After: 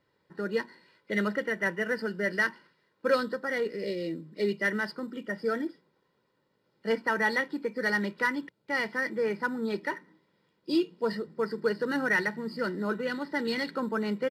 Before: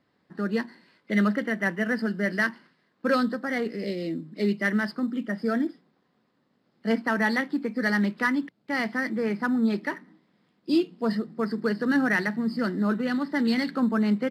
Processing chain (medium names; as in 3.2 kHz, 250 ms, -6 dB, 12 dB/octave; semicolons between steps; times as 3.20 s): comb 2.1 ms, depth 60%; trim -3 dB